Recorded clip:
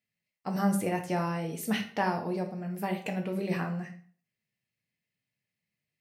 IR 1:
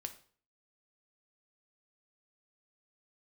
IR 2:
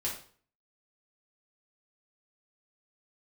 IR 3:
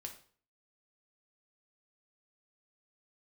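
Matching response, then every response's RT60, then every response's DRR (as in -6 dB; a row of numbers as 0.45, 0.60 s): 3; 0.45, 0.45, 0.45 s; 6.5, -5.0, 2.5 dB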